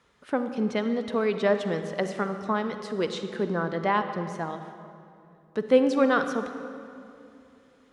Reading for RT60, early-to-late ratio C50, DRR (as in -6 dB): 2.7 s, 8.5 dB, 8.0 dB